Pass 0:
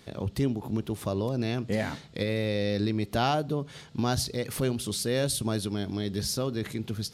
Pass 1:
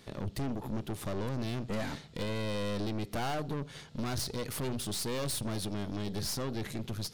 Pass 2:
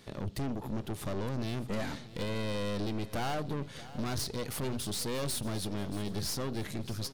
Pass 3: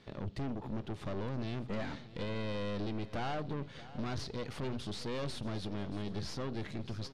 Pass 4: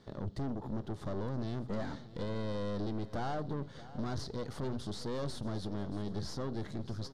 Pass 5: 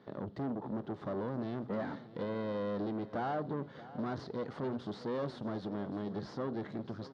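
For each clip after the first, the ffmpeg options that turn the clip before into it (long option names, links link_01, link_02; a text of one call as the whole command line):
ffmpeg -i in.wav -af "aeval=exprs='(tanh(44.7*val(0)+0.65)-tanh(0.65))/44.7':channel_layout=same,volume=1.5dB" out.wav
ffmpeg -i in.wav -af "aecho=1:1:630|1260|1890|2520:0.15|0.0688|0.0317|0.0146" out.wav
ffmpeg -i in.wav -af "lowpass=4100,volume=-3dB" out.wav
ffmpeg -i in.wav -af "equalizer=frequency=2500:width_type=o:width=0.66:gain=-14,volume=1dB" out.wav
ffmpeg -i in.wav -af "highpass=180,lowpass=2500,volume=2.5dB" out.wav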